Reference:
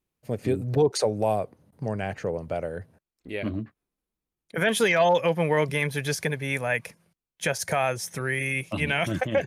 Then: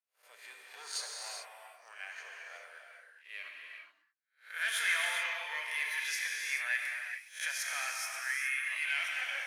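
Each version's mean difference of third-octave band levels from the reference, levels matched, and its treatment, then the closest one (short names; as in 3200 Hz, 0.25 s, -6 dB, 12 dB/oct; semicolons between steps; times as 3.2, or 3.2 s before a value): 17.5 dB: spectral swells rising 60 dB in 0.38 s; sample leveller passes 1; ladder high-pass 1200 Hz, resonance 25%; non-linear reverb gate 0.45 s flat, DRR -0.5 dB; gain -7.5 dB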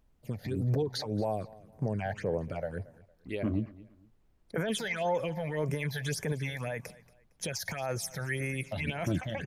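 4.5 dB: limiter -21.5 dBFS, peak gain reduction 10 dB; phaser stages 8, 1.8 Hz, lowest notch 320–4100 Hz; added noise brown -67 dBFS; feedback echo 0.229 s, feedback 31%, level -20.5 dB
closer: second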